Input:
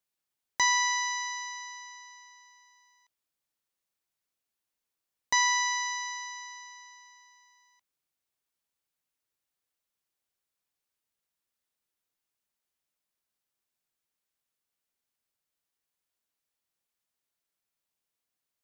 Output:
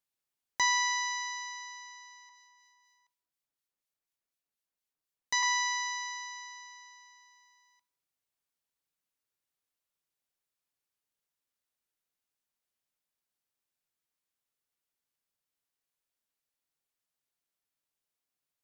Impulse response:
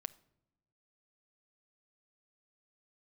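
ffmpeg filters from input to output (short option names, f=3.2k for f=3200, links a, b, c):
-filter_complex "[0:a]asettb=1/sr,asplit=3[a][b][c];[a]atrim=end=2.294[d];[b]atrim=start=2.29:end=5.43,asetpts=PTS-STARTPTS,afade=t=in:d=0.004:c=qsin,afade=t=out:st=3.136:d=0.004:c=qsin,acrossover=split=1700[e][f];[e]aeval=exprs='val(0)*(1-0.5/2+0.5/2*cos(2*PI*4.1*n/s))':c=same[g];[f]aeval=exprs='val(0)*(1-0.5/2-0.5/2*cos(2*PI*4.1*n/s))':c=same[h];[g][h]amix=inputs=2:normalize=0[i];[c]atrim=start=5.426[j];[d][i]acrossfade=d=0.004:c1=hsin:c2=qsin[k];[k][j]acrossfade=d=0.004:c1=qsin:c2=hsin[l];[1:a]atrim=start_sample=2205,asetrate=41454,aresample=44100[m];[l][m]afir=irnorm=-1:irlink=0"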